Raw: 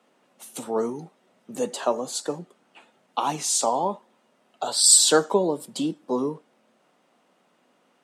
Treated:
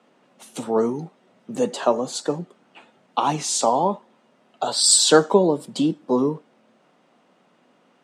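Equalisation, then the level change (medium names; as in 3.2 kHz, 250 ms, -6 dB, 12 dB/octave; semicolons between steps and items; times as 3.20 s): distance through air 52 m; bass shelf 180 Hz +7 dB; +4.0 dB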